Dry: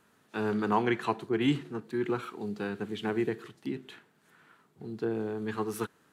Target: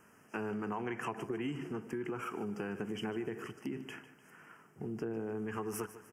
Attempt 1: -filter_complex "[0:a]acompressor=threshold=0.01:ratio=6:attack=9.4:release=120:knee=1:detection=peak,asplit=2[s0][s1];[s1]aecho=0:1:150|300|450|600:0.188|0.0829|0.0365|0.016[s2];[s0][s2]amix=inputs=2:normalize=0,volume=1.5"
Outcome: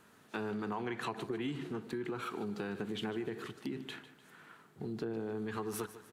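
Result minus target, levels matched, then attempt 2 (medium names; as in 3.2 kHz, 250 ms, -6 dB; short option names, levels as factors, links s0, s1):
4 kHz band +4.5 dB
-filter_complex "[0:a]acompressor=threshold=0.01:ratio=6:attack=9.4:release=120:knee=1:detection=peak,asuperstop=centerf=3900:order=12:qfactor=2.2,asplit=2[s0][s1];[s1]aecho=0:1:150|300|450|600:0.188|0.0829|0.0365|0.016[s2];[s0][s2]amix=inputs=2:normalize=0,volume=1.5"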